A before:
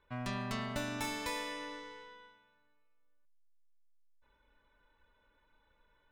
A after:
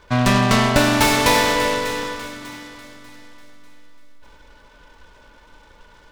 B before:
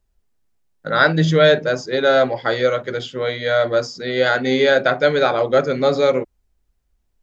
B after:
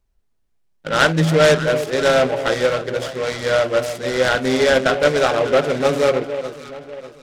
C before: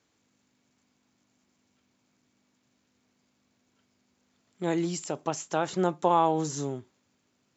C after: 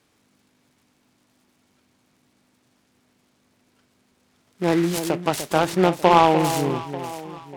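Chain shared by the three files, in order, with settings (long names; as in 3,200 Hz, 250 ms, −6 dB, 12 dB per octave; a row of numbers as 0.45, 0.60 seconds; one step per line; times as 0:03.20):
on a send: delay that swaps between a low-pass and a high-pass 297 ms, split 1,000 Hz, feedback 61%, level −9 dB
on the sum: short delay modulated by noise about 1,600 Hz, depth 0.05 ms
normalise the peak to −1.5 dBFS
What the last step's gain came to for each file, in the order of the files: +22.5, −0.5, +8.0 decibels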